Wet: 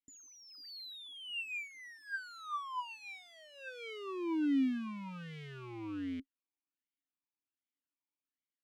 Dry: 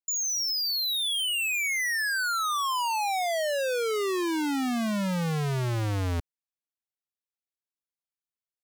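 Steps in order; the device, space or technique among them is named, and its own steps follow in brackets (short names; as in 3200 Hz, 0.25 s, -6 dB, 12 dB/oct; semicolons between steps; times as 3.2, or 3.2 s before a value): talk box (tube stage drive 43 dB, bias 0.8; vowel sweep i-u 1.3 Hz); gain +15.5 dB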